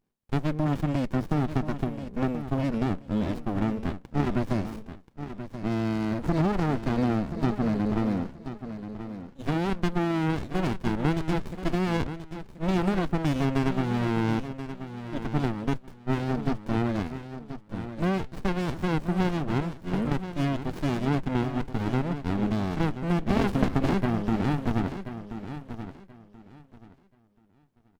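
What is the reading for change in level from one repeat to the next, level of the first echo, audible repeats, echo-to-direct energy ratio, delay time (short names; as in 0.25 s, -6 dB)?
-13.0 dB, -11.0 dB, 2, -11.0 dB, 1.031 s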